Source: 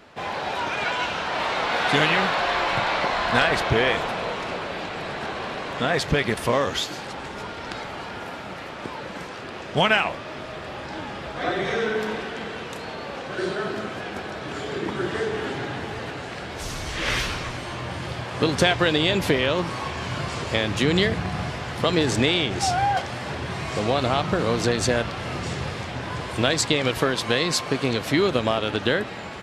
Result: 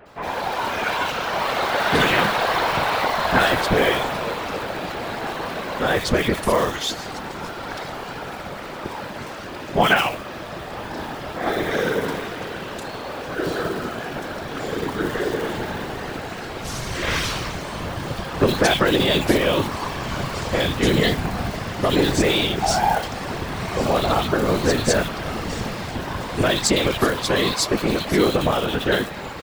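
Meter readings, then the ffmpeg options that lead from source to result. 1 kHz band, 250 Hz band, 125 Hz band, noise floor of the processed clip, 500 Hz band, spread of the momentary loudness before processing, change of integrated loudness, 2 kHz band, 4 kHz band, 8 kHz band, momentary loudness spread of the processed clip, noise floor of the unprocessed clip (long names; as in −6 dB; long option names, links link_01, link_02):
+3.0 dB, +3.0 dB, +1.5 dB, −33 dBFS, +3.0 dB, 13 LU, +2.5 dB, +1.5 dB, +1.5 dB, +3.5 dB, 13 LU, −35 dBFS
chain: -filter_complex "[0:a]afftfilt=real='hypot(re,im)*cos(2*PI*random(0))':imag='hypot(re,im)*sin(2*PI*random(1))':win_size=512:overlap=0.75,acrusher=bits=5:mode=log:mix=0:aa=0.000001,acrossover=split=2500[link_01][link_02];[link_02]adelay=60[link_03];[link_01][link_03]amix=inputs=2:normalize=0,volume=9dB"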